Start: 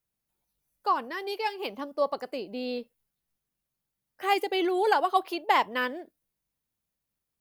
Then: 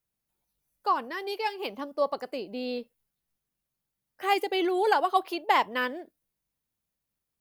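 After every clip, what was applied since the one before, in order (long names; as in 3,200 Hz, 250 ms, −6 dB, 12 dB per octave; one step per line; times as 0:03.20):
no processing that can be heard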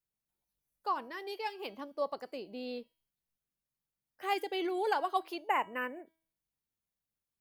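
hum removal 323.5 Hz, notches 33
gain on a spectral selection 0:05.49–0:06.07, 3,000–6,700 Hz −27 dB
level −7.5 dB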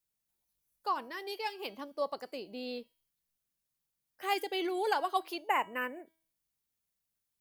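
high-shelf EQ 3,400 Hz +6.5 dB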